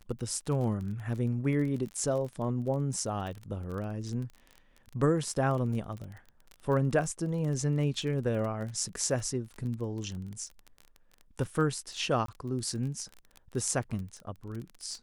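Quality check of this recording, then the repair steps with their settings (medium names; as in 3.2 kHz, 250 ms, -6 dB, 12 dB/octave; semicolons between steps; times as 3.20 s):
crackle 27 per s -36 dBFS
12.26–12.28 s: dropout 23 ms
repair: de-click; interpolate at 12.26 s, 23 ms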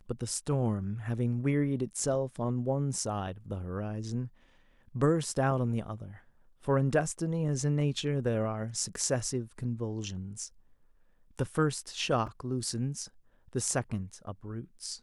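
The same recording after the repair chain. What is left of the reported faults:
nothing left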